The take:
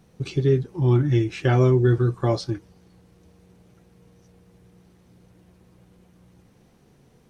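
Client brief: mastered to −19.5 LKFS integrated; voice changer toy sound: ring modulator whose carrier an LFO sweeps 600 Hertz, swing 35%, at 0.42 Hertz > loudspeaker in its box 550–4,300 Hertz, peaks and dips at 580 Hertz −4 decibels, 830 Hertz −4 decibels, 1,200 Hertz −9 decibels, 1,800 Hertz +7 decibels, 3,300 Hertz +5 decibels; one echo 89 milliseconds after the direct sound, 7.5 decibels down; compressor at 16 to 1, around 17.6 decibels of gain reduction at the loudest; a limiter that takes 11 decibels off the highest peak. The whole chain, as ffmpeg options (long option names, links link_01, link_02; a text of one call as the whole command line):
ffmpeg -i in.wav -af "acompressor=threshold=-31dB:ratio=16,alimiter=level_in=5dB:limit=-24dB:level=0:latency=1,volume=-5dB,aecho=1:1:89:0.422,aeval=exprs='val(0)*sin(2*PI*600*n/s+600*0.35/0.42*sin(2*PI*0.42*n/s))':channel_layout=same,highpass=550,equalizer=frequency=580:width_type=q:width=4:gain=-4,equalizer=frequency=830:width_type=q:width=4:gain=-4,equalizer=frequency=1200:width_type=q:width=4:gain=-9,equalizer=frequency=1800:width_type=q:width=4:gain=7,equalizer=frequency=3300:width_type=q:width=4:gain=5,lowpass=frequency=4300:width=0.5412,lowpass=frequency=4300:width=1.3066,volume=26dB" out.wav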